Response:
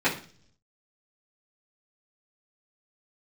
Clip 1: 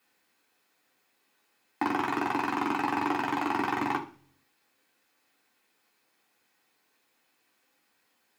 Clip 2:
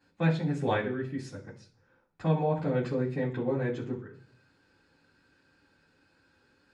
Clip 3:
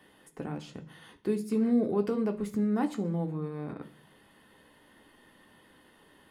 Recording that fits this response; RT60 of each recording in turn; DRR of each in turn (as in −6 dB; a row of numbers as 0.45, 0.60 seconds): 2; 0.45, 0.45, 0.45 seconds; −1.5, −11.5, 3.5 decibels